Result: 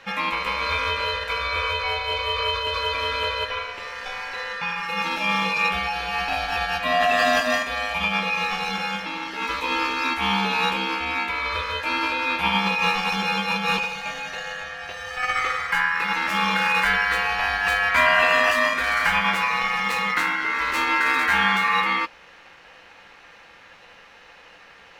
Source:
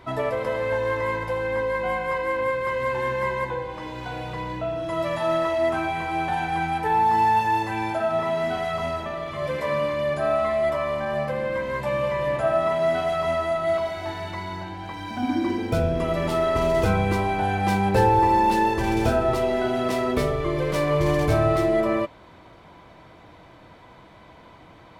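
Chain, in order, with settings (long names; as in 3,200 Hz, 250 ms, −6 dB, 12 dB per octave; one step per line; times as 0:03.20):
ring modulation 1,500 Hz
formants moved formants +2 semitones
level +3 dB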